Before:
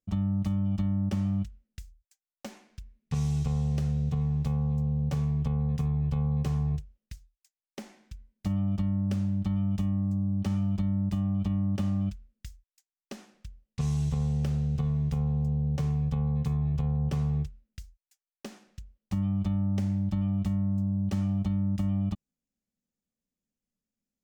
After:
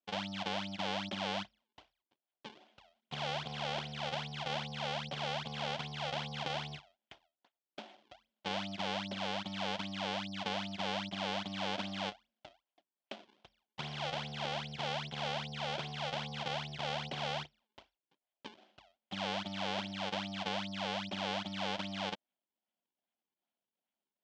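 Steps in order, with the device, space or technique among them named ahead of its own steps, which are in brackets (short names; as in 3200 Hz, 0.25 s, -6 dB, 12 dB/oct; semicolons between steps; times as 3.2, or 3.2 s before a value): circuit-bent sampling toy (decimation with a swept rate 39×, swing 160% 2.5 Hz; speaker cabinet 420–5100 Hz, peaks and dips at 460 Hz -8 dB, 690 Hz +5 dB, 1200 Hz -7 dB, 1800 Hz -4 dB, 3200 Hz +8 dB)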